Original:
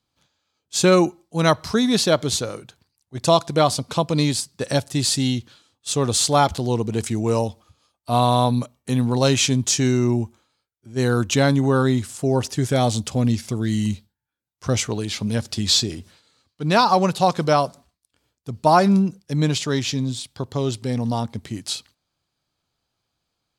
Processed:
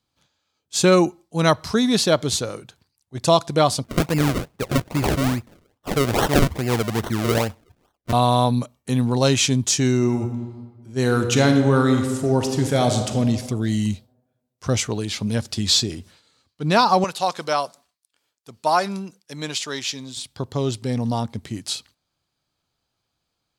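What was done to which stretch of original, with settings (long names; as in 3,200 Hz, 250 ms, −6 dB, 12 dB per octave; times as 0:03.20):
0:03.84–0:08.13: sample-and-hold swept by an LFO 36× 2.4 Hz
0:09.96–0:13.20: thrown reverb, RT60 1.4 s, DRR 5 dB
0:17.04–0:20.17: high-pass filter 900 Hz 6 dB per octave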